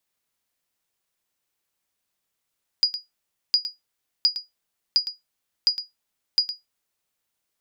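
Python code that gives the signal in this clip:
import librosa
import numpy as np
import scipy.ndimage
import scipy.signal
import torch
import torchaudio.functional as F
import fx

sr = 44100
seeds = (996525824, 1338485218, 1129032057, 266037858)

y = fx.sonar_ping(sr, hz=4890.0, decay_s=0.17, every_s=0.71, pings=6, echo_s=0.11, echo_db=-12.0, level_db=-10.0)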